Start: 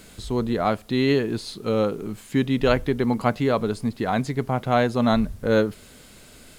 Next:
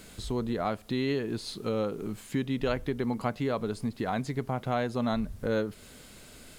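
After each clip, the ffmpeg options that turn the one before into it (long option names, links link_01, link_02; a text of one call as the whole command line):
ffmpeg -i in.wav -af "acompressor=threshold=-28dB:ratio=2,volume=-2.5dB" out.wav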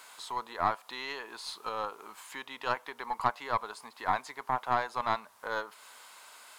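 ffmpeg -i in.wav -af "highpass=frequency=970:width_type=q:width=4.3,aeval=exprs='0.299*(cos(1*acos(clip(val(0)/0.299,-1,1)))-cos(1*PI/2))+0.0335*(cos(4*acos(clip(val(0)/0.299,-1,1)))-cos(4*PI/2))':channel_layout=same,volume=-1.5dB" out.wav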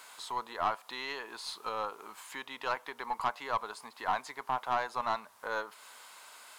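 ffmpeg -i in.wav -af "asoftclip=type=tanh:threshold=-19.5dB" out.wav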